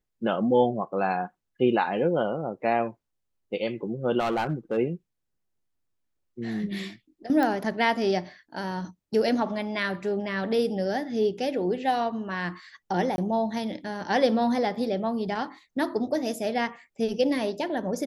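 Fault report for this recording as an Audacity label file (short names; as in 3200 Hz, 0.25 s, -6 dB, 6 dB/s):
4.190000	4.780000	clipped -22 dBFS
7.430000	7.430000	pop -15 dBFS
13.160000	13.180000	gap 21 ms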